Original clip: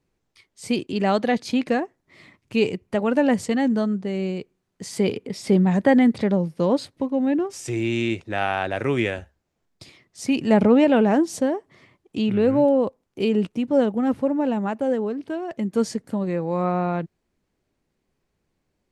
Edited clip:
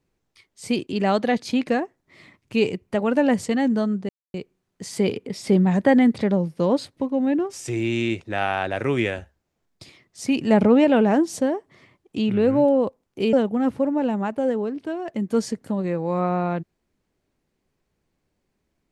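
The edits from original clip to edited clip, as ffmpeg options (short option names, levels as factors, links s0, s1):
-filter_complex "[0:a]asplit=4[s0][s1][s2][s3];[s0]atrim=end=4.09,asetpts=PTS-STARTPTS,afade=t=out:st=4.086:d=0.004:c=hsin[s4];[s1]atrim=start=4.09:end=4.34,asetpts=PTS-STARTPTS,volume=0[s5];[s2]atrim=start=4.34:end=13.332,asetpts=PTS-STARTPTS,afade=t=in:d=0.004:c=hsin[s6];[s3]atrim=start=13.758[s7];[s4][s5][s6]concat=n=3:v=0:a=1[s8];[s8][s7]acrossfade=d=0.004:c1=hsin:c2=hsin"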